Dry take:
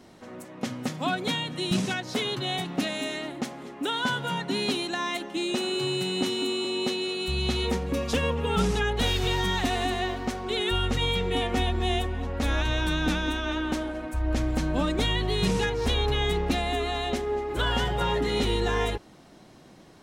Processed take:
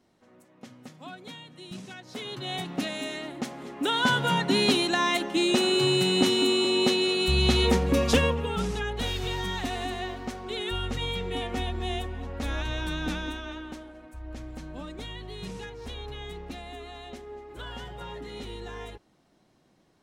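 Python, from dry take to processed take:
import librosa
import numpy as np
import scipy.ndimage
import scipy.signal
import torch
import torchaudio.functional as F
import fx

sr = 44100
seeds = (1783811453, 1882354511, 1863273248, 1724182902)

y = fx.gain(x, sr, db=fx.line((1.85, -15.0), (2.59, -2.5), (3.28, -2.5), (4.21, 5.0), (8.15, 5.0), (8.55, -5.0), (13.22, -5.0), (13.86, -13.5)))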